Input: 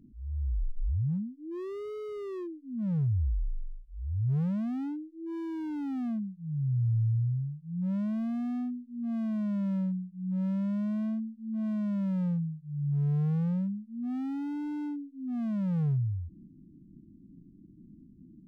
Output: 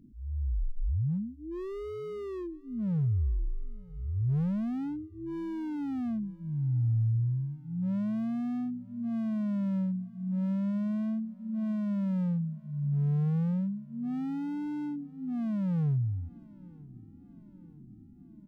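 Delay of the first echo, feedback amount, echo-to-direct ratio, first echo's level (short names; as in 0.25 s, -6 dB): 0.949 s, 59%, -21.0 dB, -23.0 dB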